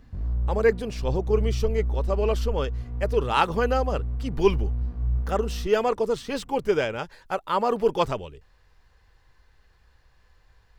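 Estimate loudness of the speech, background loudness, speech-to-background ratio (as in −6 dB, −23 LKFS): −26.5 LKFS, −30.5 LKFS, 4.0 dB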